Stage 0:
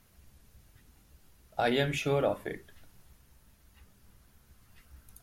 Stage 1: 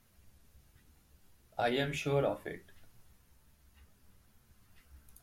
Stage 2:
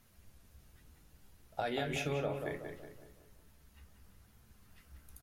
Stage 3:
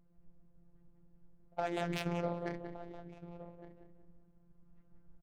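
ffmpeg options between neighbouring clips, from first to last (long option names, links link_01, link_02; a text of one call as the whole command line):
ffmpeg -i in.wav -af "flanger=delay=8.3:depth=6.2:regen=55:speed=0.68:shape=triangular" out.wav
ffmpeg -i in.wav -filter_complex "[0:a]acompressor=threshold=-34dB:ratio=6,asplit=2[link_01][link_02];[link_02]adelay=185,lowpass=frequency=2200:poles=1,volume=-5.5dB,asplit=2[link_03][link_04];[link_04]adelay=185,lowpass=frequency=2200:poles=1,volume=0.46,asplit=2[link_05][link_06];[link_06]adelay=185,lowpass=frequency=2200:poles=1,volume=0.46,asplit=2[link_07][link_08];[link_08]adelay=185,lowpass=frequency=2200:poles=1,volume=0.46,asplit=2[link_09][link_10];[link_10]adelay=185,lowpass=frequency=2200:poles=1,volume=0.46,asplit=2[link_11][link_12];[link_12]adelay=185,lowpass=frequency=2200:poles=1,volume=0.46[link_13];[link_01][link_03][link_05][link_07][link_09][link_11][link_13]amix=inputs=7:normalize=0,volume=1.5dB" out.wav
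ffmpeg -i in.wav -af "aecho=1:1:1165:0.224,afftfilt=real='hypot(re,im)*cos(PI*b)':imag='0':win_size=1024:overlap=0.75,adynamicsmooth=sensitivity=7.5:basefreq=510,volume=4.5dB" out.wav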